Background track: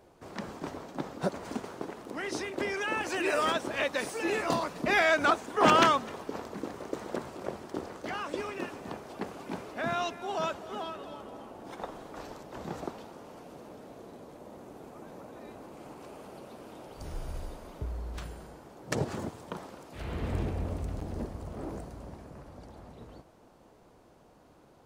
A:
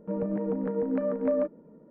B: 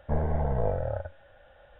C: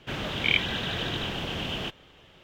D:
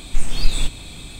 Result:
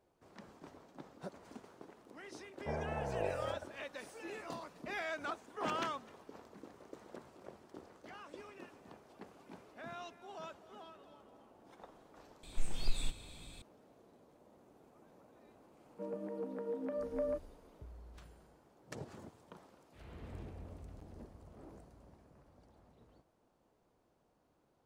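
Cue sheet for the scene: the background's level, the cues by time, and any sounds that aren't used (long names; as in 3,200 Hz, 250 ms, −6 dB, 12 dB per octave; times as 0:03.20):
background track −16 dB
0:02.57: mix in B −6.5 dB + high-pass filter 260 Hz 6 dB per octave
0:12.43: mix in D −16.5 dB
0:15.91: mix in A −9.5 dB + high-pass filter 300 Hz
not used: C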